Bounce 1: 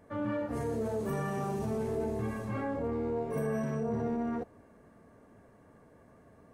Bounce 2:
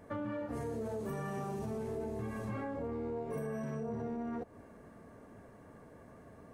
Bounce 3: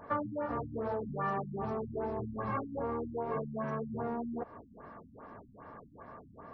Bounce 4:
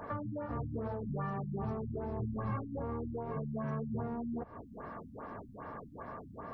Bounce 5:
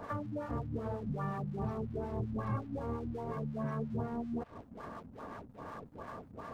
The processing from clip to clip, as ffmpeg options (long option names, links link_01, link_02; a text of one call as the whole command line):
ffmpeg -i in.wav -af "acompressor=threshold=-40dB:ratio=5,volume=3.5dB" out.wav
ffmpeg -i in.wav -af "equalizer=frequency=1100:width=1:gain=13.5,afftfilt=real='re*lt(b*sr/1024,260*pow(5900/260,0.5+0.5*sin(2*PI*2.5*pts/sr)))':imag='im*lt(b*sr/1024,260*pow(5900/260,0.5+0.5*sin(2*PI*2.5*pts/sr)))':win_size=1024:overlap=0.75" out.wav
ffmpeg -i in.wav -filter_complex "[0:a]acrossover=split=180[link_01][link_02];[link_02]acompressor=threshold=-47dB:ratio=4[link_03];[link_01][link_03]amix=inputs=2:normalize=0,volume=6dB" out.wav
ffmpeg -i in.wav -filter_complex "[0:a]aeval=exprs='sgn(val(0))*max(abs(val(0))-0.001,0)':channel_layout=same,acrossover=split=810[link_01][link_02];[link_01]aeval=exprs='val(0)*(1-0.5/2+0.5/2*cos(2*PI*5.5*n/s))':channel_layout=same[link_03];[link_02]aeval=exprs='val(0)*(1-0.5/2-0.5/2*cos(2*PI*5.5*n/s))':channel_layout=same[link_04];[link_03][link_04]amix=inputs=2:normalize=0,volume=3dB" out.wav